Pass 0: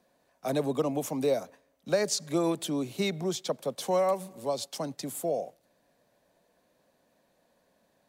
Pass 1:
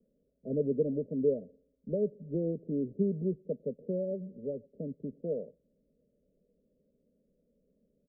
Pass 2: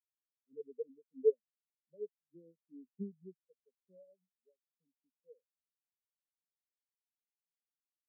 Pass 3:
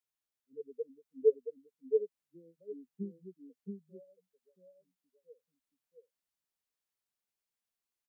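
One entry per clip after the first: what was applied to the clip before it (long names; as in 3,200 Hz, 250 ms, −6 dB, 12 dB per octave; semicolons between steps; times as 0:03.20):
Butterworth low-pass 570 Hz 96 dB per octave; low-shelf EQ 91 Hz +10 dB; comb filter 4.6 ms, depth 48%; level −2.5 dB
every bin expanded away from the loudest bin 4 to 1
single-tap delay 675 ms −3 dB; level +2 dB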